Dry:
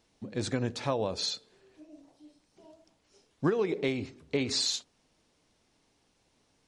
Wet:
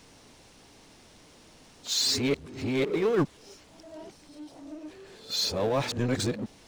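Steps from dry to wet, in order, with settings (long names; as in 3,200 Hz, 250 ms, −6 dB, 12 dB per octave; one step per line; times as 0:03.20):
played backwards from end to start
power curve on the samples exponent 0.7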